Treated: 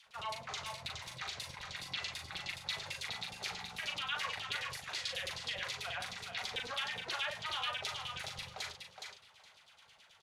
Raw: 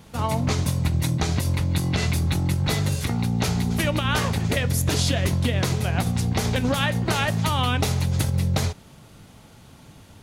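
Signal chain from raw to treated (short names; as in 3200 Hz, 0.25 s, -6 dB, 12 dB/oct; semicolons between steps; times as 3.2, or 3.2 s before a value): passive tone stack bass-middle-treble 10-0-10; limiter -23.5 dBFS, peak gain reduction 8 dB; LFO band-pass saw down 9.3 Hz 340–4300 Hz; doubler 39 ms -5 dB; thinning echo 0.417 s, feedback 16%, high-pass 310 Hz, level -5 dB; gain +3 dB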